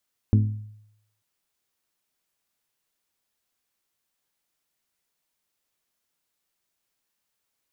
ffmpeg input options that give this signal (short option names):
-f lavfi -i "aevalsrc='0.224*pow(10,-3*t/0.77)*sin(2*PI*106*t)+0.112*pow(10,-3*t/0.474)*sin(2*PI*212*t)+0.0562*pow(10,-3*t/0.417)*sin(2*PI*254.4*t)+0.0282*pow(10,-3*t/0.357)*sin(2*PI*318*t)+0.0141*pow(10,-3*t/0.292)*sin(2*PI*424*t)':d=0.89:s=44100"